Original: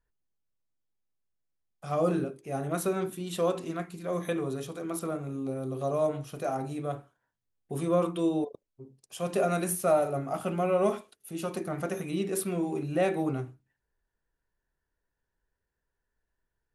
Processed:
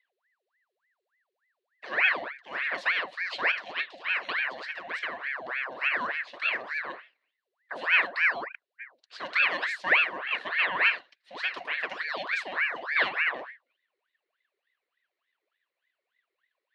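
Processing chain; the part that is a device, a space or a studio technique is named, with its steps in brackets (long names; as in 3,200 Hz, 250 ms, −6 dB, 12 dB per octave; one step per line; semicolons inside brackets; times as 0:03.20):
0:10.77–0:11.35: high-shelf EQ 9,700 Hz −10 dB
voice changer toy (ring modulator whose carrier an LFO sweeps 1,200 Hz, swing 70%, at 3.4 Hz; loudspeaker in its box 590–4,500 Hz, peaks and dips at 850 Hz −9 dB, 1,300 Hz −7 dB, 1,800 Hz +5 dB, 2,800 Hz +5 dB, 4,100 Hz +8 dB)
level +4 dB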